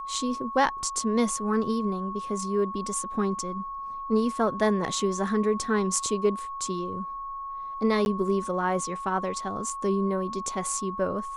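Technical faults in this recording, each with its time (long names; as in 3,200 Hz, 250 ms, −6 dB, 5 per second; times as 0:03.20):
whistle 1,100 Hz −33 dBFS
0:08.05–0:08.06: drop-out 11 ms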